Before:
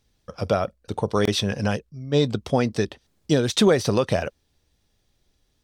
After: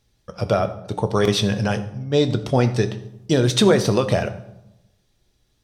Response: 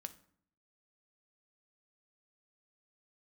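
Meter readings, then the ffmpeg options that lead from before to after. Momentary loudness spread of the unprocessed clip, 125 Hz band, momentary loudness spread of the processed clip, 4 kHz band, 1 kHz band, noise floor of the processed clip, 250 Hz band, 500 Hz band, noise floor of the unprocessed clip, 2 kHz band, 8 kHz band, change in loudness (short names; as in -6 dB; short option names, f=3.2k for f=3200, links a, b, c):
11 LU, +5.0 dB, 11 LU, +2.5 dB, +2.5 dB, -66 dBFS, +2.5 dB, +2.5 dB, -69 dBFS, +2.5 dB, +2.5 dB, +3.0 dB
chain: -filter_complex "[1:a]atrim=start_sample=2205,asetrate=28665,aresample=44100[a];[0:a][a]afir=irnorm=-1:irlink=0,volume=4.5dB"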